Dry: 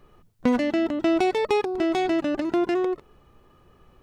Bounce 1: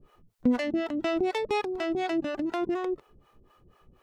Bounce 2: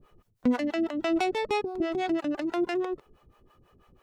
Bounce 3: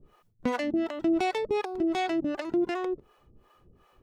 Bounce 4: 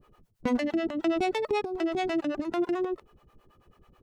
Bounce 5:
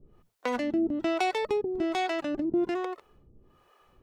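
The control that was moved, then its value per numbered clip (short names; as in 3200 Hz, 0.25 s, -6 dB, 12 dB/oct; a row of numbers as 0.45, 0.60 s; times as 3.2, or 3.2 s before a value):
harmonic tremolo, rate: 4.1, 6.1, 2.7, 9.2, 1.2 Hz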